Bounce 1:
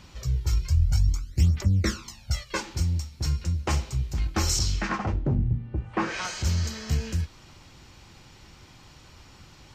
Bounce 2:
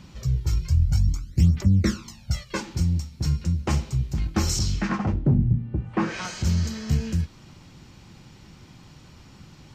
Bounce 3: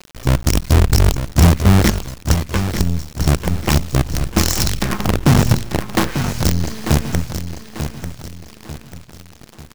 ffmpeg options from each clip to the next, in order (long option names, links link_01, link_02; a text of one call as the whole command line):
ffmpeg -i in.wav -af "equalizer=frequency=180:width_type=o:width=1.6:gain=10,volume=-1.5dB" out.wav
ffmpeg -i in.wav -af "acrusher=bits=4:dc=4:mix=0:aa=0.000001,aecho=1:1:893|1786|2679|3572:0.355|0.142|0.0568|0.0227,volume=6.5dB" out.wav